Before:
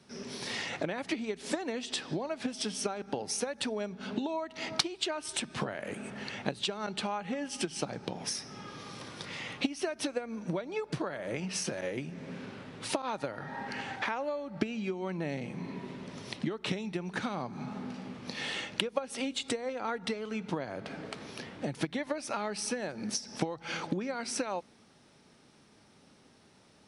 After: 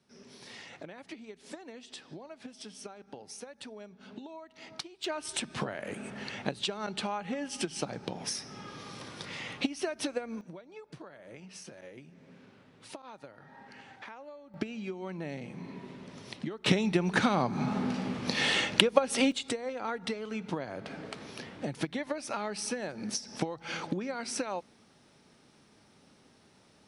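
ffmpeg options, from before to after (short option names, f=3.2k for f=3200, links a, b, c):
-af "asetnsamples=n=441:p=0,asendcmd='5.04 volume volume 0dB;10.41 volume volume -13dB;14.54 volume volume -3.5dB;16.66 volume volume 8.5dB;19.32 volume volume -0.5dB',volume=-11.5dB"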